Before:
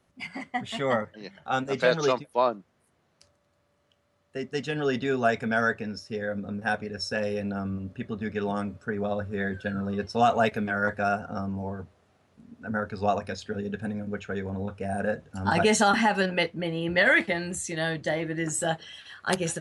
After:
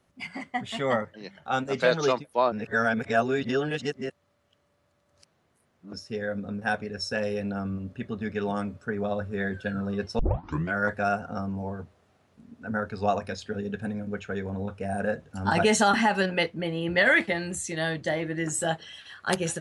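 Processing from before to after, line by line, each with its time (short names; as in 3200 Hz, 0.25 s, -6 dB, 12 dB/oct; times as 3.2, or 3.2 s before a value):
2.52–5.93 reverse
10.19 tape start 0.54 s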